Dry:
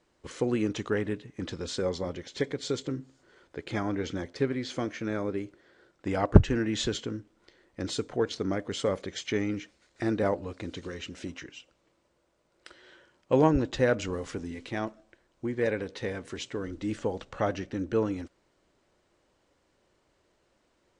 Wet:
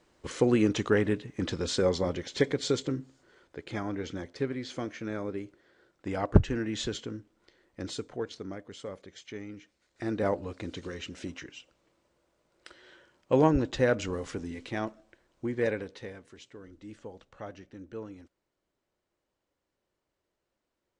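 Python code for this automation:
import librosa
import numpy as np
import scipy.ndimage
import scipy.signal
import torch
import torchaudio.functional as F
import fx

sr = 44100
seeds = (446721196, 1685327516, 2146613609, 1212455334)

y = fx.gain(x, sr, db=fx.line((2.57, 4.0), (3.64, -3.5), (7.82, -3.5), (8.77, -12.0), (9.59, -12.0), (10.31, -0.5), (15.67, -0.5), (16.32, -13.5)))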